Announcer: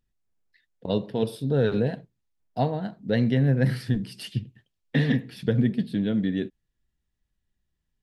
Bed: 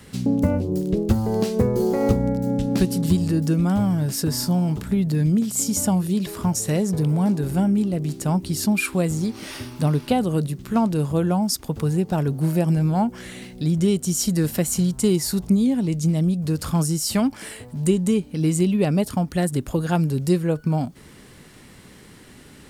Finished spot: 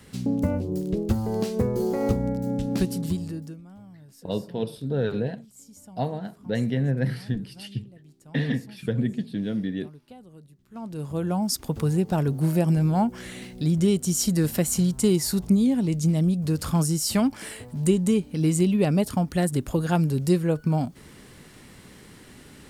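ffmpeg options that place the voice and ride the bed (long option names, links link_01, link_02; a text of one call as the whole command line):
ffmpeg -i stem1.wav -i stem2.wav -filter_complex "[0:a]adelay=3400,volume=-3dB[link_01];[1:a]volume=20.5dB,afade=type=out:start_time=2.83:duration=0.78:silence=0.0794328,afade=type=in:start_time=10.7:duration=0.96:silence=0.0562341[link_02];[link_01][link_02]amix=inputs=2:normalize=0" out.wav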